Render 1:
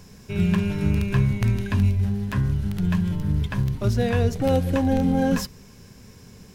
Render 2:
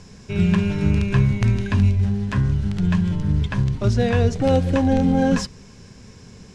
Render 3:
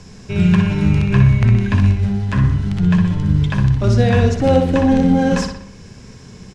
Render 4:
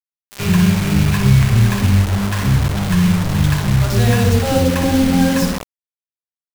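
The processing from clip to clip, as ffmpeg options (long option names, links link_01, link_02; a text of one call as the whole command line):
ffmpeg -i in.wav -af "lowpass=frequency=8200:width=0.5412,lowpass=frequency=8200:width=1.3066,volume=3dB" out.wav
ffmpeg -i in.wav -filter_complex "[0:a]acrossover=split=450|3300[link_01][link_02][link_03];[link_03]alimiter=level_in=2dB:limit=-24dB:level=0:latency=1:release=494,volume=-2dB[link_04];[link_01][link_02][link_04]amix=inputs=3:normalize=0,asplit=2[link_05][link_06];[link_06]adelay=61,lowpass=frequency=4400:poles=1,volume=-5dB,asplit=2[link_07][link_08];[link_08]adelay=61,lowpass=frequency=4400:poles=1,volume=0.53,asplit=2[link_09][link_10];[link_10]adelay=61,lowpass=frequency=4400:poles=1,volume=0.53,asplit=2[link_11][link_12];[link_12]adelay=61,lowpass=frequency=4400:poles=1,volume=0.53,asplit=2[link_13][link_14];[link_14]adelay=61,lowpass=frequency=4400:poles=1,volume=0.53,asplit=2[link_15][link_16];[link_16]adelay=61,lowpass=frequency=4400:poles=1,volume=0.53,asplit=2[link_17][link_18];[link_18]adelay=61,lowpass=frequency=4400:poles=1,volume=0.53[link_19];[link_05][link_07][link_09][link_11][link_13][link_15][link_17][link_19]amix=inputs=8:normalize=0,volume=3.5dB" out.wav
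ffmpeg -i in.wav -filter_complex "[0:a]acrossover=split=570[link_01][link_02];[link_01]adelay=100[link_03];[link_03][link_02]amix=inputs=2:normalize=0,acrusher=bits=3:mix=0:aa=0.000001" out.wav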